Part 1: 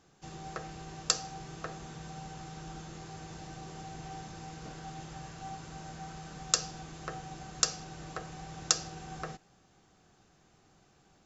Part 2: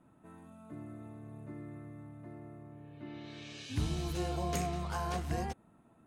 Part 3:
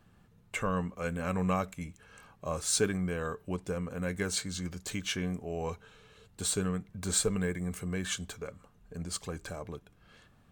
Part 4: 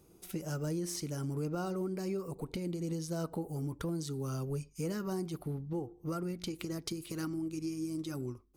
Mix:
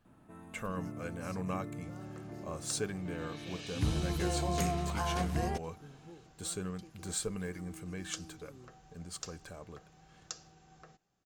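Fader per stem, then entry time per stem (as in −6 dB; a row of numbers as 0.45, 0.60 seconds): −16.5, +2.0, −7.5, −16.0 decibels; 1.60, 0.05, 0.00, 0.35 seconds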